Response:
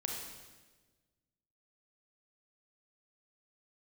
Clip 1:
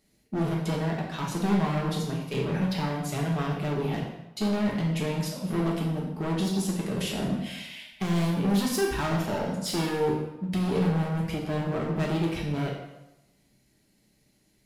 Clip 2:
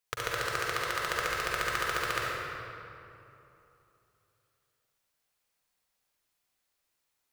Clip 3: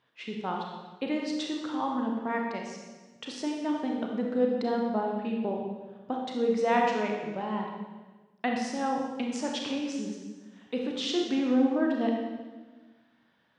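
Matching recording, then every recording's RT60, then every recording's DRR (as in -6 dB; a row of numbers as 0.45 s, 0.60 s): 3; 0.90 s, 2.9 s, 1.3 s; -2.5 dB, -5.5 dB, 0.0 dB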